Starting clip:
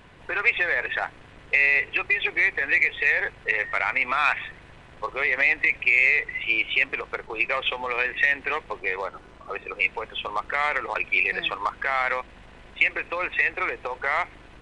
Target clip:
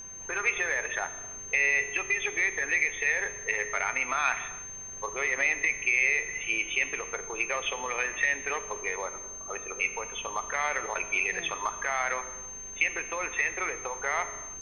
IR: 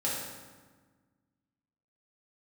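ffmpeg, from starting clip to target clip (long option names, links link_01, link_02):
-filter_complex "[0:a]highshelf=frequency=5800:gain=-9.5,aeval=exprs='val(0)+0.0178*sin(2*PI*6300*n/s)':channel_layout=same,asplit=2[link_01][link_02];[1:a]atrim=start_sample=2205,afade=type=out:start_time=0.31:duration=0.01,atrim=end_sample=14112,asetrate=33516,aresample=44100[link_03];[link_02][link_03]afir=irnorm=-1:irlink=0,volume=-16.5dB[link_04];[link_01][link_04]amix=inputs=2:normalize=0,volume=-6dB"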